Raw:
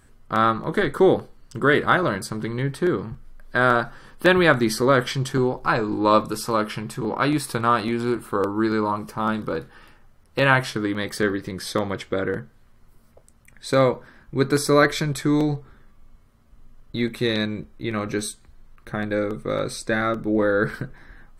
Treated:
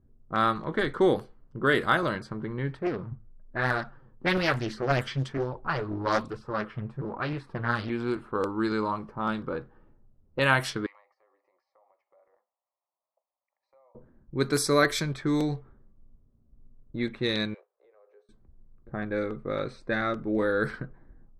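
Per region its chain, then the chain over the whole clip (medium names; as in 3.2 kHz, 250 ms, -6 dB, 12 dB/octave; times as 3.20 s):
2.77–7.90 s: peaking EQ 100 Hz +9 dB 0.92 oct + flange 1.1 Hz, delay 0.9 ms, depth 8.8 ms, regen +29% + loudspeaker Doppler distortion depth 0.83 ms
10.86–13.95 s: Chebyshev high-pass 490 Hz, order 5 + static phaser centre 2.3 kHz, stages 8 + compression 8:1, threshold -43 dBFS
17.54–18.29 s: companding laws mixed up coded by A + steep high-pass 440 Hz 72 dB/octave + compression, threshold -42 dBFS
whole clip: treble shelf 3.5 kHz +7 dB; level-controlled noise filter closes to 370 Hz, open at -15 dBFS; trim -6 dB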